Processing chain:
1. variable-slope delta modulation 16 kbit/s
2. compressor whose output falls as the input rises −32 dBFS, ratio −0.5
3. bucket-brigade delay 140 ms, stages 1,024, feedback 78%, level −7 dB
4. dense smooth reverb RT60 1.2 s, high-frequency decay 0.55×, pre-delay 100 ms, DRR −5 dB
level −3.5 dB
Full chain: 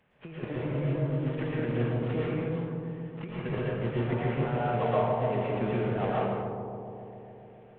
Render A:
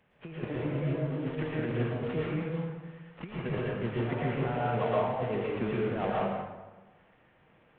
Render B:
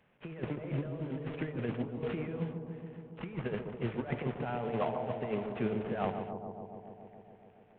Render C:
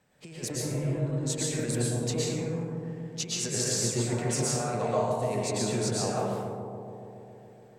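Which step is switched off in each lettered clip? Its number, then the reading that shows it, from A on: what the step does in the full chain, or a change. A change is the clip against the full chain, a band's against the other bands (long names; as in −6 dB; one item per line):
3, change in momentary loudness spread −2 LU
4, echo-to-direct ratio 6.0 dB to −8.0 dB
1, change in momentary loudness spread −1 LU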